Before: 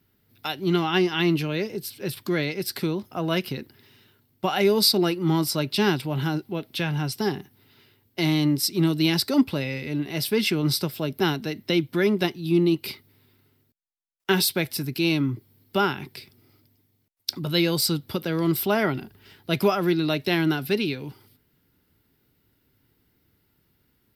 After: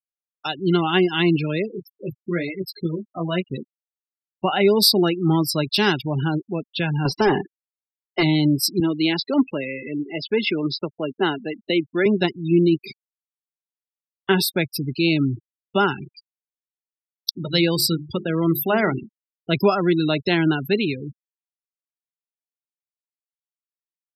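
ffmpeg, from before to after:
-filter_complex "[0:a]asettb=1/sr,asplit=3[a][b][c];[a]atrim=end=1.714[d];[b]atrim=start=1.71:end=3.53,asetpts=PTS-STARTPTS,afade=t=in:d=0.004:c=qsin,afade=t=out:st=1.816:d=0.004:c=qsin,flanger=delay=16:depth=2.7:speed=1.1[e];[c]atrim=start=3.526[f];[d][e]acrossfade=d=0.004:c1=hsin:c2=qsin[g];[g][f]acrossfade=d=0.004:c1=qsin:c2=hsin,asettb=1/sr,asplit=3[h][i][j];[h]atrim=end=5.644[k];[i]atrim=start=5.64:end=6.05,asetpts=PTS-STARTPTS,afade=t=in:d=0.004:c=qsin,afade=t=out:st=0.406:d=0.004:c=qsin,tiltshelf=f=760:g=-3.5[l];[j]atrim=start=6.046[m];[k][l]acrossfade=d=0.004:c1=hsin:c2=qsin[n];[n][m]acrossfade=d=0.004:c1=qsin:c2=hsin,asettb=1/sr,asplit=3[o][p][q];[o]atrim=end=7.054[r];[p]atrim=start=7.05:end=8.23,asetpts=PTS-STARTPTS,afade=t=in:d=0.004:c=qsin,afade=t=out:st=1.176:d=0.004:c=qsin,asplit=2[s][t];[t]highpass=f=720:p=1,volume=25dB,asoftclip=type=tanh:threshold=-12dB[u];[s][u]amix=inputs=2:normalize=0,lowpass=f=1.7k:p=1,volume=-6dB[v];[q]atrim=start=8.226[w];[r][v]acrossfade=d=0.004:c1=hsin:c2=qsin[x];[x][w]acrossfade=d=0.004:c1=qsin:c2=hsin,asettb=1/sr,asplit=3[y][z][aa];[y]atrim=end=8.804[ab];[z]atrim=start=8.8:end=12.06,asetpts=PTS-STARTPTS,afade=t=in:d=0.004:c=qsin,afade=t=out:st=3.256:d=0.004:c=qsin,highpass=260,lowpass=3.9k[ac];[aa]atrim=start=12.056[ad];[ab][ac]acrossfade=d=0.004:c1=hsin:c2=qsin[ae];[ae][ad]acrossfade=d=0.004:c1=qsin:c2=hsin,asettb=1/sr,asplit=3[af][ag][ah];[af]atrim=end=12.754[ai];[ag]atrim=start=12.75:end=14.58,asetpts=PTS-STARTPTS,afade=t=in:d=0.004:c=qsin,afade=t=out:st=1.826:d=0.004:c=qsin,highshelf=f=2.6k:g=-3.5[aj];[ah]atrim=start=14.576[ak];[ai][aj]acrossfade=d=0.004:c1=hsin:c2=qsin[al];[al][ak]acrossfade=d=0.004:c1=qsin:c2=hsin,asettb=1/sr,asplit=3[am][an][ao];[am]atrim=end=16.034[ap];[an]atrim=start=16.03:end=19.01,asetpts=PTS-STARTPTS,afade=t=in:d=0.004:c=qsin,afade=t=out:st=2.976:d=0.004:c=qsin,bandreject=f=50:t=h:w=6,bandreject=f=100:t=h:w=6,bandreject=f=150:t=h:w=6,bandreject=f=200:t=h:w=6,bandreject=f=250:t=h:w=6,bandreject=f=300:t=h:w=6,bandreject=f=350:t=h:w=6,bandreject=f=400:t=h:w=6,bandreject=f=450:t=h:w=6[aq];[ao]atrim=start=19.006[ar];[ap][aq]acrossfade=d=0.004:c1=hsin:c2=qsin[as];[as][ar]acrossfade=d=0.004:c1=qsin:c2=hsin,afftfilt=real='re*gte(hypot(re,im),0.0447)':imag='im*gte(hypot(re,im),0.0447)':win_size=1024:overlap=0.75,volume=3.5dB"

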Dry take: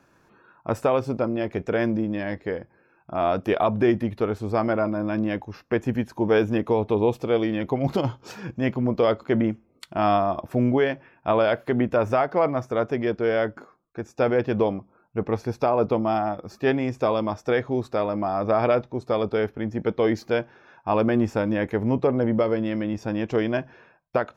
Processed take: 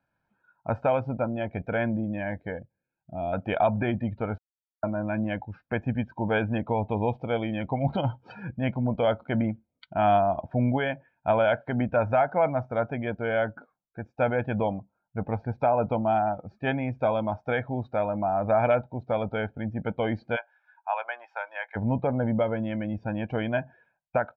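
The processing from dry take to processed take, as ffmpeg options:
-filter_complex "[0:a]asettb=1/sr,asplit=3[a][b][c];[a]atrim=end=2.594[d];[b]atrim=start=2.59:end=3.33,asetpts=PTS-STARTPTS,afade=t=in:d=0.004:c=qsin,afade=t=out:st=0.736:d=0.004:c=qsin,equalizer=f=1.2k:t=o:w=1.9:g=-14.5[e];[c]atrim=start=3.326[f];[d][e]acrossfade=d=0.004:c1=hsin:c2=qsin[g];[g][f]acrossfade=d=0.004:c1=qsin:c2=hsin,asplit=3[h][i][j];[h]afade=t=out:st=20.35:d=0.02[k];[i]highpass=f=770:w=0.5412,highpass=f=770:w=1.3066,afade=t=in:st=20.35:d=0.02,afade=t=out:st=21.75:d=0.02[l];[j]afade=t=in:st=21.75:d=0.02[m];[k][l][m]amix=inputs=3:normalize=0,asplit=3[n][o][p];[n]atrim=end=4.38,asetpts=PTS-STARTPTS,afade=t=out:st=4.376:d=0.004:c=hsin[q];[o]atrim=start=4.38:end=4.83,asetpts=PTS-STARTPTS,volume=0[r];[p]atrim=start=4.83,asetpts=PTS-STARTPTS,afade=t=in:d=0.004:c=hsin[s];[q][r][s]concat=n=3:v=0:a=1,lowpass=f=4.1k:w=0.5412,lowpass=f=4.1k:w=1.3066,afftdn=nr=16:nf=-41,aecho=1:1:1.3:0.68,volume=-3.5dB"

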